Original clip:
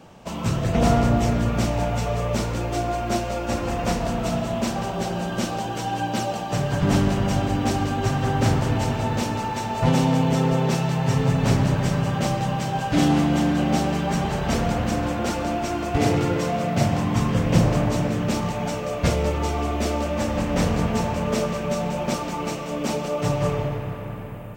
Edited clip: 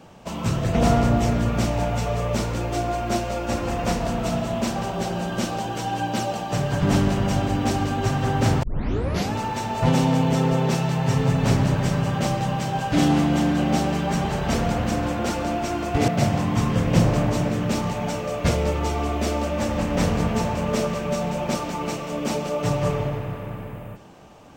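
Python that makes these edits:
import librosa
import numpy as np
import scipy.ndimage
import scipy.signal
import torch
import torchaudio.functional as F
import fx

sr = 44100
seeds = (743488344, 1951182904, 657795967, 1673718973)

y = fx.edit(x, sr, fx.tape_start(start_s=8.63, length_s=0.71),
    fx.cut(start_s=16.08, length_s=0.59), tone=tone)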